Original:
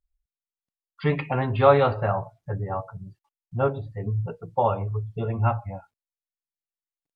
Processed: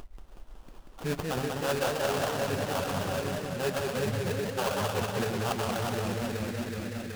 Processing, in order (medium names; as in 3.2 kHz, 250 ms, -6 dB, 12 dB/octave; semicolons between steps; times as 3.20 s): peaking EQ 110 Hz -12 dB 0.38 oct; two-band feedback delay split 460 Hz, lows 374 ms, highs 126 ms, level -6.5 dB; in parallel at +2 dB: upward compressor, threshold -22 dBFS; on the sum: reverb removal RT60 0.81 s; reverse; compression 6:1, threshold -29 dBFS, peak gain reduction 23 dB; reverse; peaking EQ 1.4 kHz -5 dB; sample-rate reducer 2.1 kHz, jitter 20%; modulated delay 185 ms, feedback 66%, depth 154 cents, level -3.5 dB